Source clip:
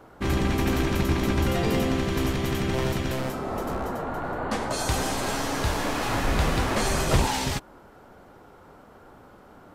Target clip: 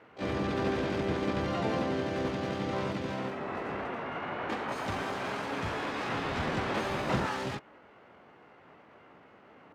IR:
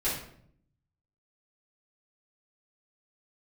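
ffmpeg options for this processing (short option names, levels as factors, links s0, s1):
-filter_complex "[0:a]highpass=110,lowpass=2300,asplit=3[s0][s1][s2];[s1]asetrate=66075,aresample=44100,atempo=0.66742,volume=0.891[s3];[s2]asetrate=88200,aresample=44100,atempo=0.5,volume=0.562[s4];[s0][s3][s4]amix=inputs=3:normalize=0,volume=0.376"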